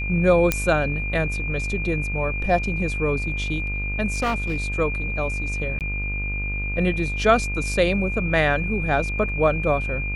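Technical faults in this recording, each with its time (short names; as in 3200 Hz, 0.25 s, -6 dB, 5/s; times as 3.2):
buzz 50 Hz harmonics 32 -28 dBFS
tone 2400 Hz -28 dBFS
0.52 pop -4 dBFS
4.12–4.66 clipped -18.5 dBFS
5.79–5.81 gap 18 ms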